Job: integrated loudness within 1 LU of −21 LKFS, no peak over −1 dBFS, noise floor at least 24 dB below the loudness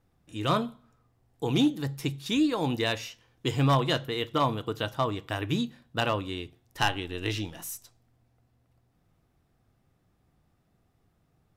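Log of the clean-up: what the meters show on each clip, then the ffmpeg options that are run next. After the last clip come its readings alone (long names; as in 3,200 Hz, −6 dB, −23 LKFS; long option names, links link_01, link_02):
integrated loudness −29.0 LKFS; sample peak −16.0 dBFS; target loudness −21.0 LKFS
→ -af "volume=8dB"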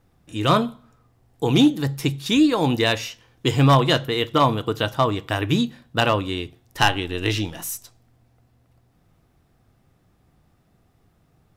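integrated loudness −21.0 LKFS; sample peak −8.0 dBFS; background noise floor −62 dBFS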